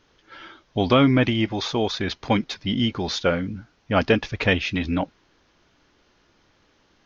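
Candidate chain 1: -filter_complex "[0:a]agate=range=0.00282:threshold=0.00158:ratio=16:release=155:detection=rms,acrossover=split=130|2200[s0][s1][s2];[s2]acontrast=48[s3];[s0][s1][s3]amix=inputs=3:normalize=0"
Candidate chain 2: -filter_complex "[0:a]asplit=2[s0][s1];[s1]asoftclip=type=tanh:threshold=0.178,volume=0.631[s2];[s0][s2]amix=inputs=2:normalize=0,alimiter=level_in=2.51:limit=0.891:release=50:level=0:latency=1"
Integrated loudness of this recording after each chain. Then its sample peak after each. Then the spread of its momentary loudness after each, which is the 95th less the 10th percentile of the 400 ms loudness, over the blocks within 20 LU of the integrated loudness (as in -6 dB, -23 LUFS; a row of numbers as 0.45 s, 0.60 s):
-21.0 LUFS, -13.5 LUFS; -3.0 dBFS, -1.0 dBFS; 14 LU, 12 LU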